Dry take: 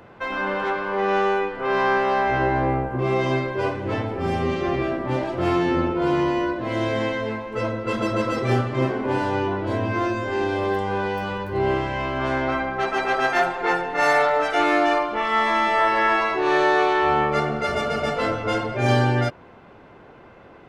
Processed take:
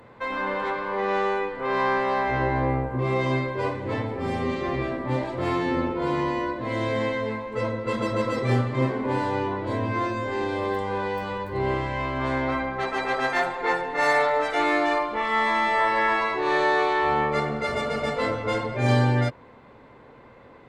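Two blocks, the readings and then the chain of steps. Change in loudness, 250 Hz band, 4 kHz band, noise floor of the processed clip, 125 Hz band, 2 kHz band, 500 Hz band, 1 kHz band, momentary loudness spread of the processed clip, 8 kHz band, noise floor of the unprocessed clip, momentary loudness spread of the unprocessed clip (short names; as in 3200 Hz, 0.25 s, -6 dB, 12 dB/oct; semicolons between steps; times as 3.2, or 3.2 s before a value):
-3.0 dB, -3.0 dB, -3.0 dB, -49 dBFS, -1.0 dB, -2.5 dB, -3.0 dB, -3.0 dB, 7 LU, -3.5 dB, -47 dBFS, 7 LU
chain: ripple EQ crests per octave 1, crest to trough 6 dB; gain -3 dB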